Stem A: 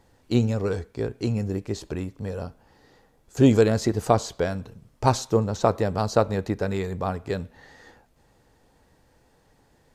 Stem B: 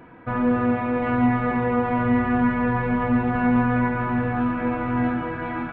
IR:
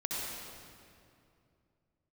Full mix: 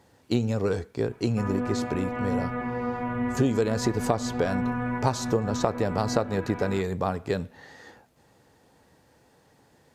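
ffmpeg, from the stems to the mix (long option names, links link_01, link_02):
-filter_complex "[0:a]highpass=94,volume=2dB[link_01];[1:a]adelay=1100,volume=-8dB[link_02];[link_01][link_02]amix=inputs=2:normalize=0,acompressor=threshold=-20dB:ratio=6"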